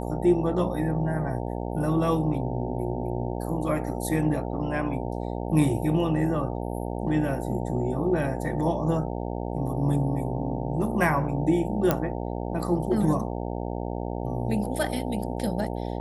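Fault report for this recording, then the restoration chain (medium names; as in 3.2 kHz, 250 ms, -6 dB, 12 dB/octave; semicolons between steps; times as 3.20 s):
buzz 60 Hz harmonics 15 -31 dBFS
11.91 s: pop -8 dBFS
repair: de-click; de-hum 60 Hz, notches 15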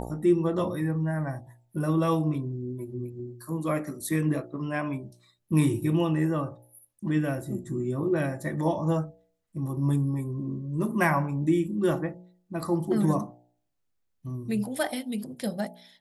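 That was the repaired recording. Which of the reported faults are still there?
nothing left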